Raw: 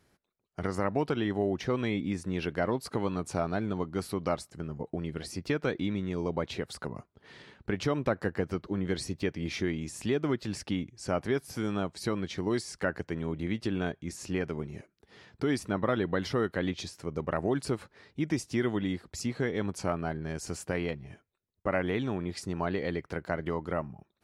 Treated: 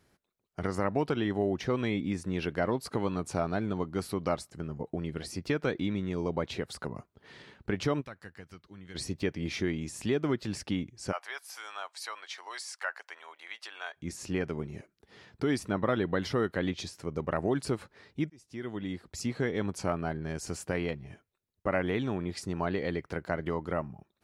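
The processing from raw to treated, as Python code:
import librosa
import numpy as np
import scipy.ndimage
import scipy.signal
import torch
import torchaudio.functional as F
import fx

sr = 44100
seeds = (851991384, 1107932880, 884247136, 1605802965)

y = fx.tone_stack(x, sr, knobs='5-5-5', at=(8.0, 8.94), fade=0.02)
y = fx.highpass(y, sr, hz=800.0, slope=24, at=(11.11, 13.96), fade=0.02)
y = fx.edit(y, sr, fx.fade_in_span(start_s=18.3, length_s=0.99), tone=tone)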